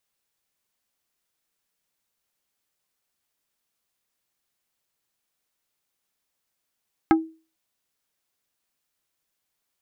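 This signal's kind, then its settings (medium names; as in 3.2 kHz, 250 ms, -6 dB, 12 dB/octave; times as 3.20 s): wood hit plate, lowest mode 322 Hz, decay 0.34 s, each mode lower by 3.5 dB, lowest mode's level -11 dB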